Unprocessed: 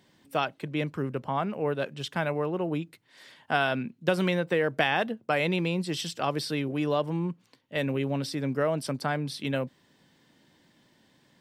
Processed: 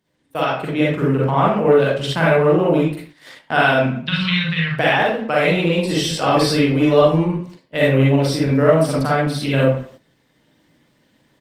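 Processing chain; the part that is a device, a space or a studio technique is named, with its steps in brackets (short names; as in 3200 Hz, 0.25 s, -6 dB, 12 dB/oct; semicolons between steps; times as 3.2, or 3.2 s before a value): 4.05–4.74 EQ curve 100 Hz 0 dB, 160 Hz +3 dB, 310 Hz -28 dB, 670 Hz -30 dB, 1100 Hz -5 dB, 1500 Hz -5 dB, 4100 Hz +8 dB, 6400 Hz -13 dB, 9600 Hz -20 dB; speakerphone in a meeting room (reverb RT60 0.45 s, pre-delay 40 ms, DRR -5.5 dB; speakerphone echo 0.19 s, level -22 dB; AGC gain up to 9.5 dB; gate -38 dBFS, range -10 dB; Opus 24 kbps 48000 Hz)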